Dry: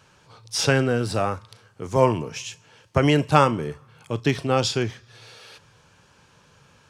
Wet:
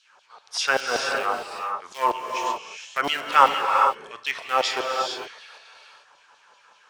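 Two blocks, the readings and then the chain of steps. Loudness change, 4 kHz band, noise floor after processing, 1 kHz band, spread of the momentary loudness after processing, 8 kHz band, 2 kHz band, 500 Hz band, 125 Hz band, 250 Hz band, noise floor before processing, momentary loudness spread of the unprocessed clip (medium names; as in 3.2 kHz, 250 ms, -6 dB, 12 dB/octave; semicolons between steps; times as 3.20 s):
-1.0 dB, +1.5 dB, -58 dBFS, +5.0 dB, 13 LU, -2.5 dB, +3.5 dB, -5.5 dB, under -25 dB, -16.0 dB, -57 dBFS, 15 LU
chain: low-pass 8.7 kHz 12 dB/octave; tilt shelf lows +5 dB; in parallel at -9.5 dB: Schmitt trigger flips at -13 dBFS; on the sum: LFO high-pass saw down 5.2 Hz 660–4100 Hz; gated-style reverb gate 480 ms rising, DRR 2 dB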